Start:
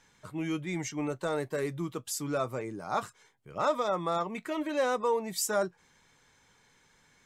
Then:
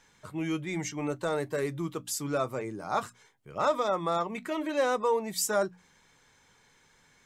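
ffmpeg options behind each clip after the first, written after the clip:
-af "bandreject=f=60:t=h:w=6,bandreject=f=120:t=h:w=6,bandreject=f=180:t=h:w=6,bandreject=f=240:t=h:w=6,bandreject=f=300:t=h:w=6,volume=1.5dB"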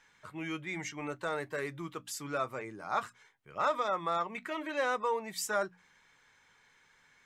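-af "equalizer=f=1.8k:w=0.57:g=10,volume=-9dB"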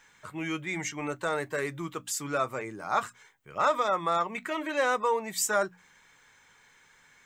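-af "aexciter=amount=1.4:drive=6:freq=6.7k,volume=5dB"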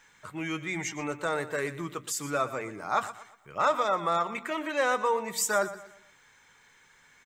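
-af "aecho=1:1:119|238|357|476:0.188|0.0716|0.0272|0.0103"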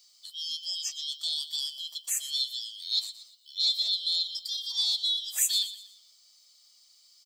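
-af "afftfilt=real='real(if(lt(b,272),68*(eq(floor(b/68),0)*2+eq(floor(b/68),1)*3+eq(floor(b/68),2)*0+eq(floor(b/68),3)*1)+mod(b,68),b),0)':imag='imag(if(lt(b,272),68*(eq(floor(b/68),0)*2+eq(floor(b/68),1)*3+eq(floor(b/68),2)*0+eq(floor(b/68),3)*1)+mod(b,68),b),0)':win_size=2048:overlap=0.75,aderivative,volume=3.5dB"

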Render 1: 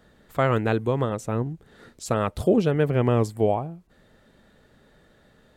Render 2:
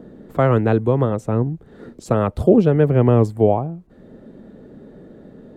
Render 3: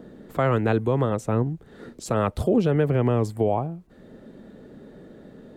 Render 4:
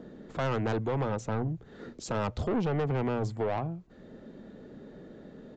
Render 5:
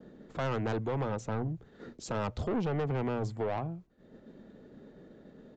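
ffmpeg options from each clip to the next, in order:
-filter_complex "[0:a]tiltshelf=f=1.5k:g=6.5,acrossover=split=190|440|2700[a][b][c][d];[b]acompressor=mode=upward:threshold=-29dB:ratio=2.5[e];[a][e][c][d]amix=inputs=4:normalize=0,volume=1dB"
-af "tiltshelf=f=1.3k:g=-4,alimiter=limit=-11dB:level=0:latency=1:release=73"
-af "bandreject=f=60:t=h:w=6,bandreject=f=120:t=h:w=6,aresample=16000,asoftclip=type=tanh:threshold=-22.5dB,aresample=44100,volume=-2.5dB"
-af "agate=range=-33dB:threshold=-44dB:ratio=3:detection=peak,volume=-2.5dB"

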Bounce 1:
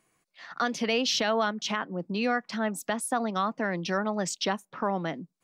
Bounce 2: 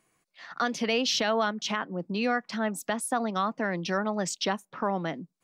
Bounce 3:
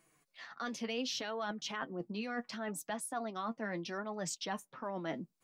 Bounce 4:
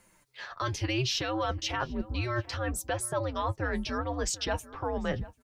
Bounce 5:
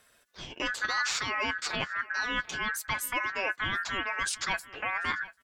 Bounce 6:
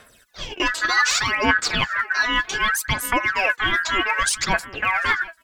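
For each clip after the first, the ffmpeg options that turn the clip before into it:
-af anull
-af "highshelf=f=11k:g=4,areverse,acompressor=threshold=-35dB:ratio=6,areverse,flanger=delay=5.9:depth=3.5:regen=43:speed=0.68:shape=triangular,volume=3dB"
-filter_complex "[0:a]afreqshift=-130,asplit=2[a][b];[b]adelay=742,lowpass=f=1.7k:p=1,volume=-17.5dB,asplit=2[c][d];[d]adelay=742,lowpass=f=1.7k:p=1,volume=0.21[e];[a][c][e]amix=inputs=3:normalize=0,volume=8dB"
-af "aeval=exprs='val(0)*sin(2*PI*1600*n/s)':c=same,volume=2.5dB"
-af "aphaser=in_gain=1:out_gain=1:delay=3.1:decay=0.66:speed=0.65:type=sinusoidal,volume=8dB"

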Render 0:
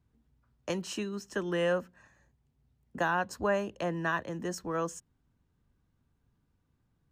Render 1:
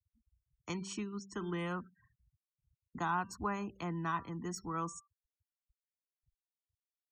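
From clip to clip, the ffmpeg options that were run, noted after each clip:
-af "bandreject=f=195.3:t=h:w=4,bandreject=f=390.6:t=h:w=4,bandreject=f=585.9:t=h:w=4,bandreject=f=781.2:t=h:w=4,bandreject=f=976.5:t=h:w=4,bandreject=f=1.1718k:t=h:w=4,bandreject=f=1.3671k:t=h:w=4,bandreject=f=1.5624k:t=h:w=4,bandreject=f=1.7577k:t=h:w=4,bandreject=f=1.953k:t=h:w=4,bandreject=f=2.1483k:t=h:w=4,bandreject=f=2.3436k:t=h:w=4,bandreject=f=2.5389k:t=h:w=4,bandreject=f=2.7342k:t=h:w=4,bandreject=f=2.9295k:t=h:w=4,bandreject=f=3.1248k:t=h:w=4,bandreject=f=3.3201k:t=h:w=4,bandreject=f=3.5154k:t=h:w=4,bandreject=f=3.7107k:t=h:w=4,bandreject=f=3.906k:t=h:w=4,bandreject=f=4.1013k:t=h:w=4,bandreject=f=4.2966k:t=h:w=4,bandreject=f=4.4919k:t=h:w=4,bandreject=f=4.6872k:t=h:w=4,bandreject=f=4.8825k:t=h:w=4,bandreject=f=5.0778k:t=h:w=4,bandreject=f=5.2731k:t=h:w=4,bandreject=f=5.4684k:t=h:w=4,afftfilt=real='re*gte(hypot(re,im),0.00355)':imag='im*gte(hypot(re,im),0.00355)':win_size=1024:overlap=0.75,aecho=1:1:0.9:0.87,volume=-6.5dB"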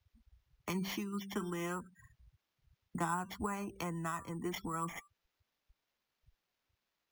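-af "acompressor=threshold=-48dB:ratio=3,flanger=delay=1.5:depth=4.4:regen=49:speed=0.49:shape=sinusoidal,acrusher=samples=5:mix=1:aa=0.000001,volume=13.5dB"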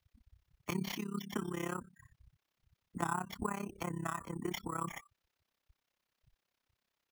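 -af "tremolo=f=33:d=0.919,volume=4dB"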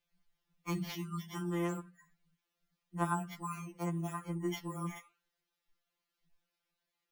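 -af "flanger=delay=4.9:depth=6.4:regen=88:speed=0.92:shape=triangular,afftfilt=real='re*2.83*eq(mod(b,8),0)':imag='im*2.83*eq(mod(b,8),0)':win_size=2048:overlap=0.75,volume=5dB"

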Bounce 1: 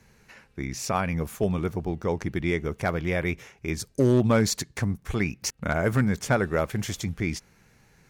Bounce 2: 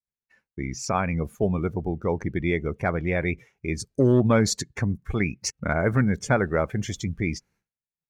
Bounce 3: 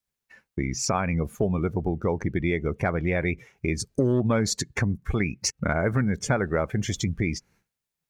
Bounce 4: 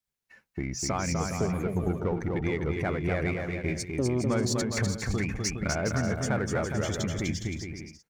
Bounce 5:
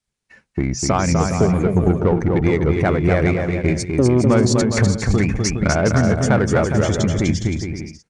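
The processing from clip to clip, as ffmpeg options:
-af "afftdn=nr=17:nf=-38,agate=range=-33dB:threshold=-56dB:ratio=3:detection=peak,volume=1.5dB"
-af "acompressor=threshold=-35dB:ratio=2.5,volume=9dB"
-filter_complex "[0:a]asplit=2[a][b];[b]asoftclip=type=tanh:threshold=-28dB,volume=-3dB[c];[a][c]amix=inputs=2:normalize=0,aecho=1:1:250|412.5|518.1|586.8|631.4:0.631|0.398|0.251|0.158|0.1,volume=-7.5dB"
-filter_complex "[0:a]asplit=2[a][b];[b]adynamicsmooth=sensitivity=2.5:basefreq=600,volume=-3dB[c];[a][c]amix=inputs=2:normalize=0,aresample=22050,aresample=44100,volume=8dB"

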